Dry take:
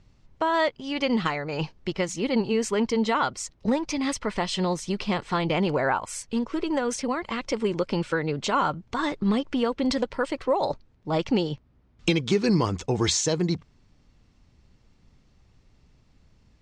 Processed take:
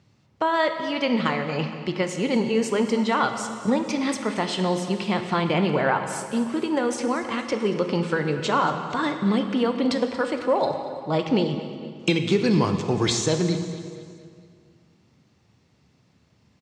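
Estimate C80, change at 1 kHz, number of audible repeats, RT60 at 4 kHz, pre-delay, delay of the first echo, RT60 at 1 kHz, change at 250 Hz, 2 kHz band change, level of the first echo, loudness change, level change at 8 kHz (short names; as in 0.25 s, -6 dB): 8.0 dB, +2.5 dB, 4, 1.8 s, 16 ms, 0.231 s, 2.0 s, +2.5 dB, +2.5 dB, -16.0 dB, +2.0 dB, -1.5 dB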